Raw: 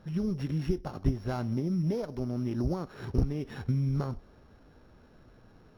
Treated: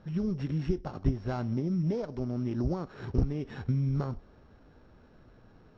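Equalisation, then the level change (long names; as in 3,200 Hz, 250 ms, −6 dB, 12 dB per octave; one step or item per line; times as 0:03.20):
Butterworth low-pass 9,100 Hz 36 dB per octave
high-frequency loss of the air 74 metres
0.0 dB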